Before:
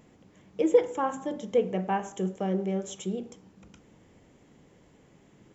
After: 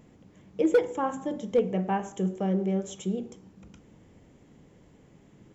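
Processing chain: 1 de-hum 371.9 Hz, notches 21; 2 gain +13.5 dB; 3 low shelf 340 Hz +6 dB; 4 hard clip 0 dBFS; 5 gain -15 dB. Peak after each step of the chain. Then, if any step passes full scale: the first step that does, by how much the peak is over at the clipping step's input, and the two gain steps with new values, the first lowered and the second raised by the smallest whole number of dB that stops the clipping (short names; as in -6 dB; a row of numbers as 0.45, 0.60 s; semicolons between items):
-9.5, +4.0, +6.0, 0.0, -15.0 dBFS; step 2, 6.0 dB; step 2 +7.5 dB, step 5 -9 dB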